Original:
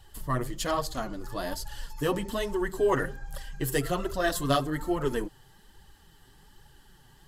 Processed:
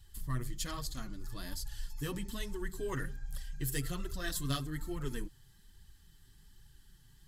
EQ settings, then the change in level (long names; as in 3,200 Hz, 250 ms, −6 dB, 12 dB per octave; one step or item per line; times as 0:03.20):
guitar amp tone stack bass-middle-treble 6-0-2
notch filter 2,900 Hz, Q 15
+10.5 dB